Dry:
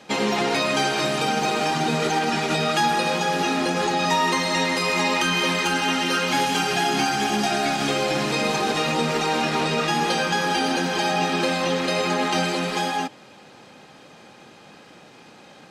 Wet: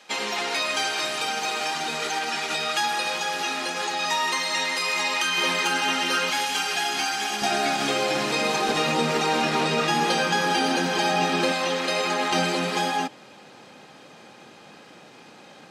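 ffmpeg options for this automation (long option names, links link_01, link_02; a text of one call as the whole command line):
ffmpeg -i in.wav -af "asetnsamples=nb_out_samples=441:pad=0,asendcmd='5.38 highpass f 510;6.3 highpass f 1300;7.42 highpass f 310;8.69 highpass f 130;11.52 highpass f 470;12.32 highpass f 130',highpass=frequency=1300:poles=1" out.wav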